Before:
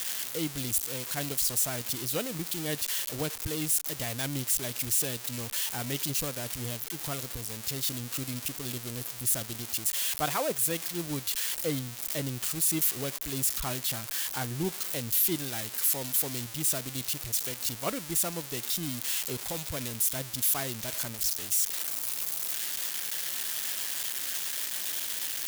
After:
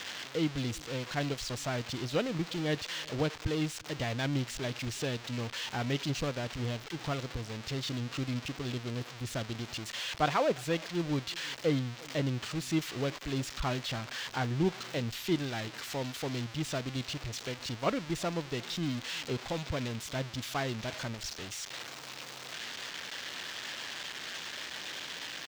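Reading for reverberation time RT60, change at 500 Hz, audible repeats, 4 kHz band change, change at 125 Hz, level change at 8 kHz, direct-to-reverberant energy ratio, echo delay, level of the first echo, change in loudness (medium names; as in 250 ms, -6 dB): no reverb, +2.5 dB, 1, -2.0 dB, +3.0 dB, -14.5 dB, no reverb, 352 ms, -24.0 dB, -6.0 dB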